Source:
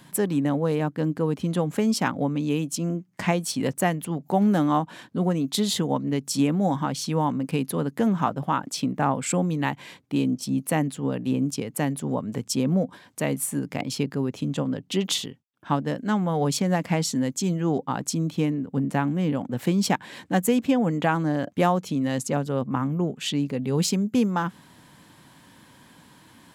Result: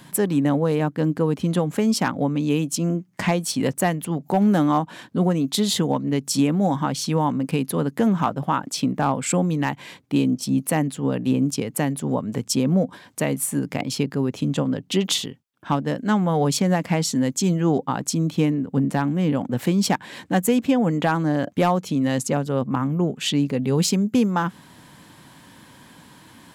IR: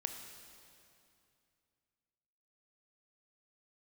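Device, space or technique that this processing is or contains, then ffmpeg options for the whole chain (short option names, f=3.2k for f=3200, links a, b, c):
clipper into limiter: -af "asoftclip=type=hard:threshold=-12dB,alimiter=limit=-14.5dB:level=0:latency=1:release=457,volume=4.5dB"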